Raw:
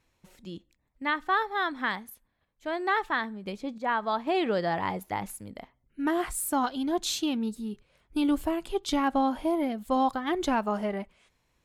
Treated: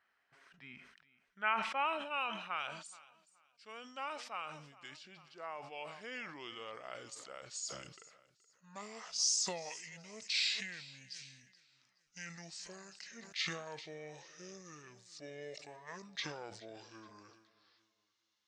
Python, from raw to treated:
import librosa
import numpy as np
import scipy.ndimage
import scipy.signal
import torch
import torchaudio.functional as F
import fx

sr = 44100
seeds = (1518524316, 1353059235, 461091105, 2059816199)

y = fx.speed_glide(x, sr, from_pct=75, to_pct=51)
y = fx.echo_feedback(y, sr, ms=424, feedback_pct=35, wet_db=-20)
y = fx.filter_sweep_bandpass(y, sr, from_hz=1600.0, to_hz=5000.0, start_s=0.62, end_s=3.38, q=1.5)
y = fx.sustainer(y, sr, db_per_s=58.0)
y = y * librosa.db_to_amplitude(2.0)